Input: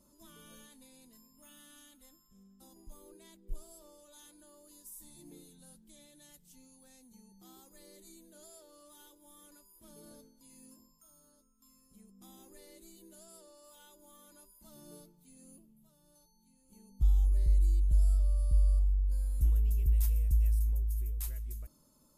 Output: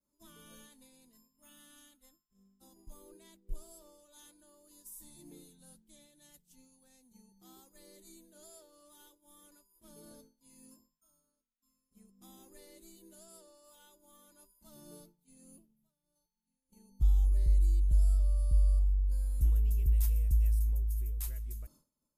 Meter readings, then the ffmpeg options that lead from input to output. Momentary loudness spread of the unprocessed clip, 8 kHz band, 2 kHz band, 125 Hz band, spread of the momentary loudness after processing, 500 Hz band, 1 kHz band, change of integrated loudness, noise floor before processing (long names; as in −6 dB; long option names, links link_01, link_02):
20 LU, −0.5 dB, −1.0 dB, 0.0 dB, 21 LU, −1.0 dB, −1.5 dB, 0.0 dB, −67 dBFS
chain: -af "agate=range=-33dB:threshold=-54dB:ratio=3:detection=peak"